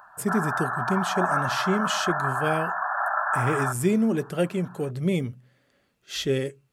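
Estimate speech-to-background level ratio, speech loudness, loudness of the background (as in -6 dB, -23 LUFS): -0.5 dB, -27.5 LUFS, -27.0 LUFS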